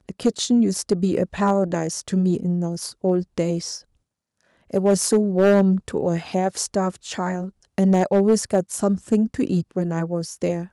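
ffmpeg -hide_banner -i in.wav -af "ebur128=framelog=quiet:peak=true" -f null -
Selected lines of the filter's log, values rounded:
Integrated loudness:
  I:         -21.7 LUFS
  Threshold: -31.9 LUFS
Loudness range:
  LRA:         2.8 LU
  Threshold: -42.0 LUFS
  LRA low:   -23.9 LUFS
  LRA high:  -21.0 LUFS
True peak:
  Peak:       -8.7 dBFS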